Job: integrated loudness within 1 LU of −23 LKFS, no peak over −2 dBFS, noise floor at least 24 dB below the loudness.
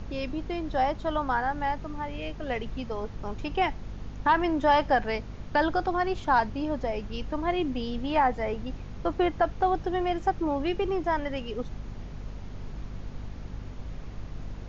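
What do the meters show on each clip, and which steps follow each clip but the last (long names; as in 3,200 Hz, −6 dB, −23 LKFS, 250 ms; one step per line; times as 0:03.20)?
mains hum 50 Hz; hum harmonics up to 250 Hz; level of the hum −39 dBFS; background noise floor −41 dBFS; target noise floor −53 dBFS; integrated loudness −28.5 LKFS; sample peak −12.0 dBFS; target loudness −23.0 LKFS
→ mains-hum notches 50/100/150/200/250 Hz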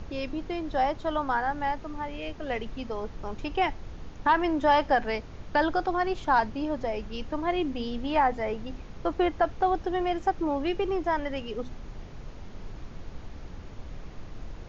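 mains hum none found; background noise floor −43 dBFS; target noise floor −53 dBFS
→ noise reduction from a noise print 10 dB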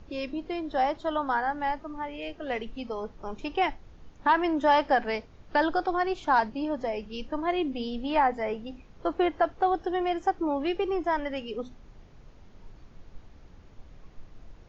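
background noise floor −53 dBFS; integrated loudness −28.5 LKFS; sample peak −12.0 dBFS; target loudness −23.0 LKFS
→ level +5.5 dB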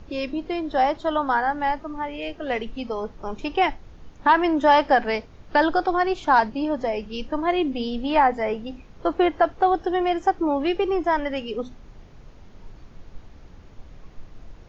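integrated loudness −23.0 LKFS; sample peak −6.5 dBFS; background noise floor −47 dBFS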